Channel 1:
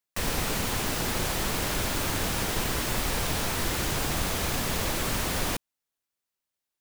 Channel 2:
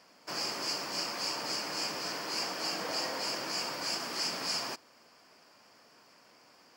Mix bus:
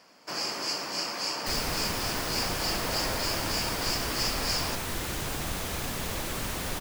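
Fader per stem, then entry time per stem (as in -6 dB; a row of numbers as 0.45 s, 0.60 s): -4.5 dB, +3.0 dB; 1.30 s, 0.00 s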